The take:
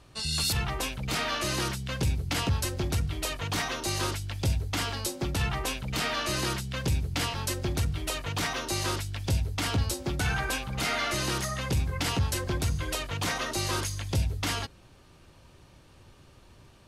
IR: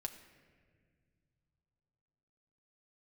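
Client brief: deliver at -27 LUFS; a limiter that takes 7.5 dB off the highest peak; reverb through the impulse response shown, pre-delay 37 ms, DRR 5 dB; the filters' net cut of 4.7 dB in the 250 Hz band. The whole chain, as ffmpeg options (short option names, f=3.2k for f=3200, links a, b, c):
-filter_complex "[0:a]equalizer=f=250:t=o:g=-7.5,alimiter=level_in=1dB:limit=-24dB:level=0:latency=1,volume=-1dB,asplit=2[a][b];[1:a]atrim=start_sample=2205,adelay=37[c];[b][c]afir=irnorm=-1:irlink=0,volume=-2.5dB[d];[a][d]amix=inputs=2:normalize=0,volume=6dB"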